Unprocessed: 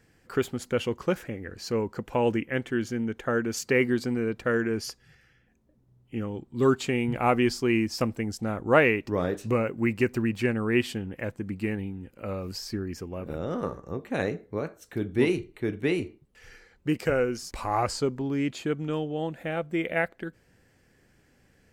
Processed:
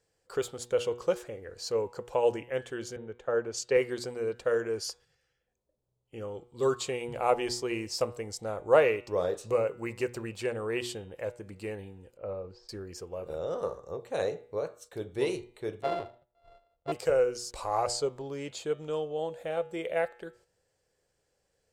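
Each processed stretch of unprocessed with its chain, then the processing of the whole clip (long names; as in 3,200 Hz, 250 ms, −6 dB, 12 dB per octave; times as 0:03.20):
0:02.96–0:03.77: high-frequency loss of the air 56 metres + multiband upward and downward expander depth 70%
0:12.17–0:12.69: head-to-tape spacing loss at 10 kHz 39 dB + transient designer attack +2 dB, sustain −3 dB
0:15.82–0:16.92: samples sorted by size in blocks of 64 samples + high-frequency loss of the air 460 metres
whole clip: hum removal 120.7 Hz, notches 32; noise gate −52 dBFS, range −8 dB; octave-band graphic EQ 250/500/1,000/2,000/4,000/8,000 Hz −11/+12/+4/−4/+7/+10 dB; level −8.5 dB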